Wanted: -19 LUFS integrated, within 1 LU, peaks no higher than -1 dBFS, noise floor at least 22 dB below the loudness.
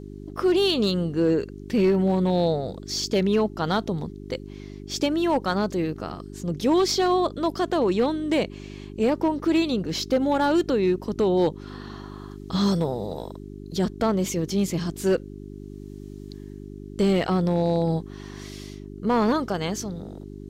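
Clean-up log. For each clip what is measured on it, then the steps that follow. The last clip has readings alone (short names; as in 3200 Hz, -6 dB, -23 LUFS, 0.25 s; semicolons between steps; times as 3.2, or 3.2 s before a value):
clipped 0.8%; flat tops at -14.0 dBFS; hum 50 Hz; harmonics up to 400 Hz; hum level -37 dBFS; loudness -24.0 LUFS; peak -14.0 dBFS; loudness target -19.0 LUFS
-> clip repair -14 dBFS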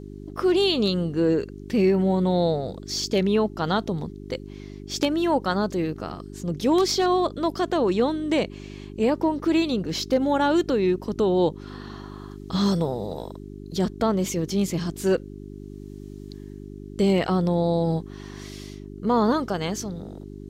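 clipped 0.0%; hum 50 Hz; harmonics up to 400 Hz; hum level -37 dBFS
-> de-hum 50 Hz, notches 8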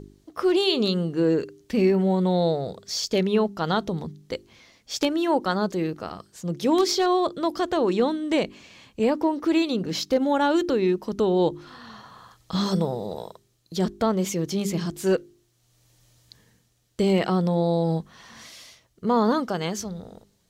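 hum none; loudness -24.5 LUFS; peak -5.5 dBFS; loudness target -19.0 LUFS
-> gain +5.5 dB; limiter -1 dBFS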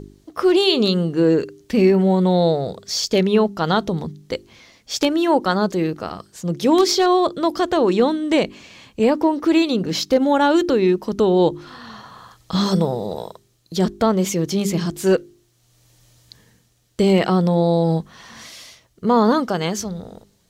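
loudness -19.0 LUFS; peak -1.0 dBFS; noise floor -60 dBFS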